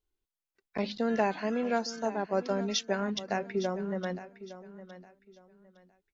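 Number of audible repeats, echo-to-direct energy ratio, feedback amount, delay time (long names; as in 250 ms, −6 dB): 2, −14.0 dB, 26%, 861 ms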